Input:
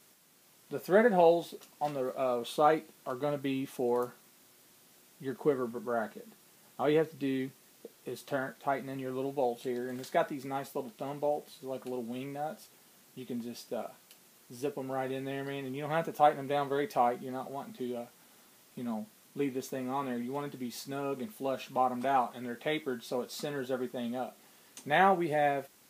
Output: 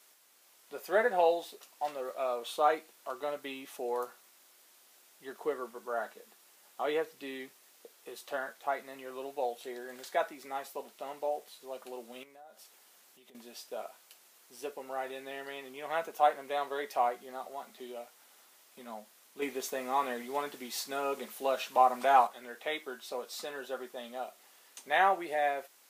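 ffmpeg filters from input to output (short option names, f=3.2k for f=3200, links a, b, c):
-filter_complex "[0:a]asettb=1/sr,asplit=3[a][b][c];[a]atrim=end=12.234[d];[b]atrim=start=12.23:end=13.35,asetpts=PTS-STARTPTS,afade=t=in:d=0.004:c=qsin,afade=t=out:st=1.116:d=0.004:c=qsin,acompressor=threshold=-49dB:ratio=6:attack=3.2:release=140:knee=1:detection=peak[e];[c]atrim=start=13.346[f];[d][e]acrossfade=d=0.004:c1=hsin:c2=qsin[g];[g][f]acrossfade=d=0.004:c1=qsin:c2=hsin,asplit=3[h][i][j];[h]atrim=end=19.422[k];[i]atrim=start=19.418:end=22.272,asetpts=PTS-STARTPTS,volume=6dB[l];[j]atrim=start=22.268[m];[k][l]acrossfade=d=0.004:c1=hsin:c2=hsin[n];[n][m]acrossfade=d=0.004:c1=hsin:c2=hsin,highpass=550"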